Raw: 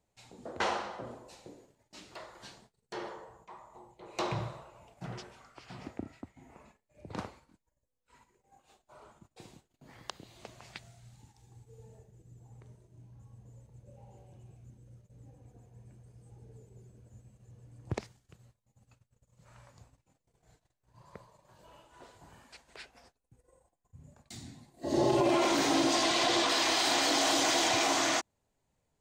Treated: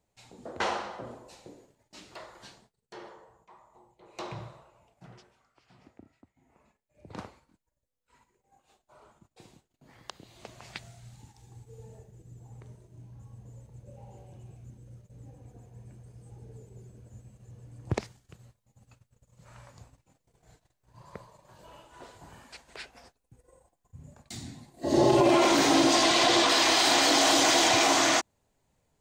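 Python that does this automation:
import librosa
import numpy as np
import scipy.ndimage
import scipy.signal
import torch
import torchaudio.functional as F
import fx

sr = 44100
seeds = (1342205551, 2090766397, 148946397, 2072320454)

y = fx.gain(x, sr, db=fx.line((2.33, 1.5), (2.97, -5.5), (4.69, -5.5), (5.44, -13.0), (6.33, -13.0), (7.09, -2.0), (10.02, -2.0), (10.8, 5.5)))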